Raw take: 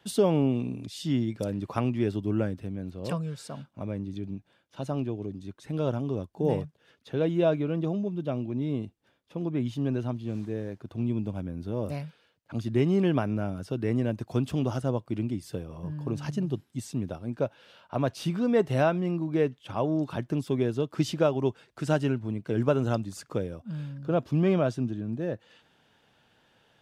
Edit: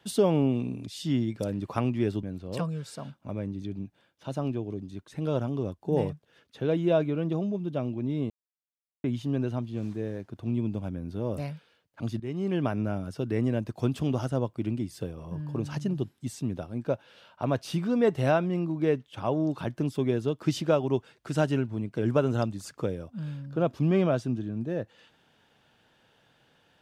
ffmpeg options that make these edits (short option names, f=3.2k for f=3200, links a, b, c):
-filter_complex "[0:a]asplit=5[a][b][c][d][e];[a]atrim=end=2.232[f];[b]atrim=start=2.748:end=8.82,asetpts=PTS-STARTPTS,afade=t=out:st=6.068:d=0.004:c=hsin[g];[c]atrim=start=8.82:end=9.56,asetpts=PTS-STARTPTS,volume=0[h];[d]atrim=start=9.56:end=12.72,asetpts=PTS-STARTPTS,afade=t=in:d=0.004:c=hsin,afade=t=out:st=3.156:d=0.004:c=hsin:silence=0.16788[i];[e]atrim=start=12.72,asetpts=PTS-STARTPTS,afade=t=in:d=0.59:silence=0.16788[j];[g][h][i][j]concat=n=4:v=0:a=1[k];[f][k]acrossfade=d=0.004:c1=hsin:c2=hsin"